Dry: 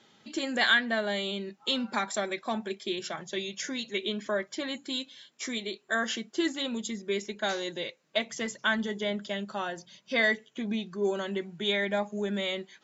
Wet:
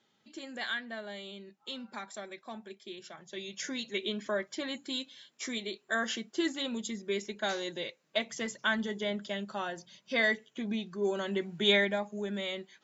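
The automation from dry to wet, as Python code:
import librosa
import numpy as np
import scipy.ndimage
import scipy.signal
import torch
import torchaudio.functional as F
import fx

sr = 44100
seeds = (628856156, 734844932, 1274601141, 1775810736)

y = fx.gain(x, sr, db=fx.line((3.18, -12.0), (3.63, -2.5), (11.09, -2.5), (11.76, 4.0), (11.99, -4.5)))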